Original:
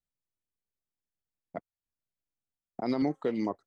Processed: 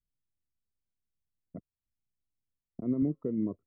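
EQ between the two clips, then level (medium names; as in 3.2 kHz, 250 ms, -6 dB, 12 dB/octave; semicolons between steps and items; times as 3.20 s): boxcar filter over 54 samples; distance through air 360 m; bass shelf 240 Hz +10 dB; -2.0 dB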